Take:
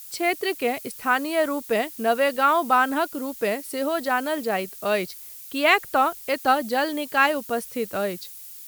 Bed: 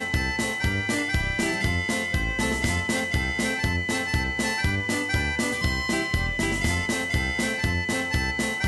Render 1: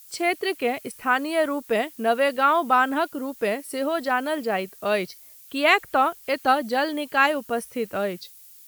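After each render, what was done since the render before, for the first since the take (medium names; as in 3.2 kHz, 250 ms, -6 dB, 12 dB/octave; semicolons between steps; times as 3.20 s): noise print and reduce 7 dB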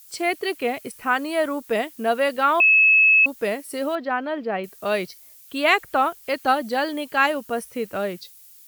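2.60–3.26 s: bleep 2.59 kHz -11.5 dBFS; 3.95–4.64 s: distance through air 270 m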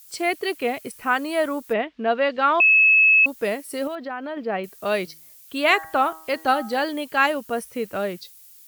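1.72–2.95 s: low-pass 2.9 kHz -> 7.5 kHz 24 dB/octave; 3.87–4.37 s: compression 3:1, threshold -28 dBFS; 5.03–6.83 s: de-hum 159.9 Hz, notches 12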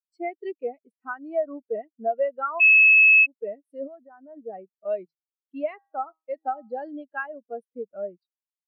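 compression 10:1, threshold -19 dBFS, peak gain reduction 7.5 dB; spectral contrast expander 2.5:1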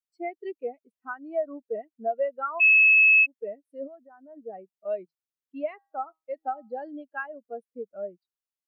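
trim -2.5 dB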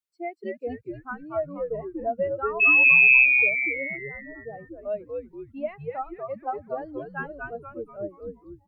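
frequency-shifting echo 239 ms, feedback 47%, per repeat -130 Hz, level -3.5 dB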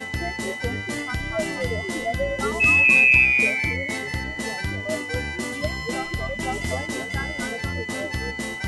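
add bed -3.5 dB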